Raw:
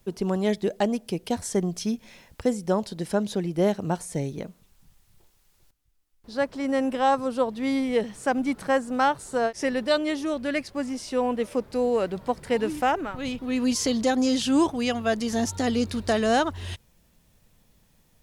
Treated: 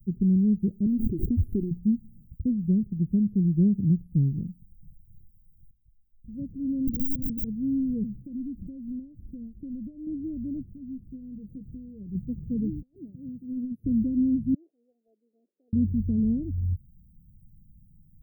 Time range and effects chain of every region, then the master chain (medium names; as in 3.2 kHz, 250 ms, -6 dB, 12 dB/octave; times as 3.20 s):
0.86–1.71 s: comb 2.9 ms, depth 79% + swell ahead of each attack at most 59 dB/s
6.87–7.51 s: compression 3:1, threshold -24 dBFS + small resonant body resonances 550/1500 Hz, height 9 dB, ringing for 20 ms + integer overflow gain 20 dB
8.23–10.07 s: comb 3.5 ms, depth 88% + compression 4:1, threshold -31 dBFS
10.68–12.15 s: compression 3:1, threshold -35 dBFS + doubling 15 ms -8.5 dB
12.82–13.84 s: frequency weighting A + compressor with a negative ratio -31 dBFS, ratio -0.5
14.54–15.73 s: CVSD coder 32 kbps + Bessel high-pass 950 Hz, order 6
whole clip: dynamic bell 360 Hz, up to +6 dB, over -37 dBFS, Q 1.4; inverse Chebyshev band-stop 1–8.2 kHz, stop band 80 dB; high-order bell 1.7 kHz -13.5 dB 2.3 oct; trim +9 dB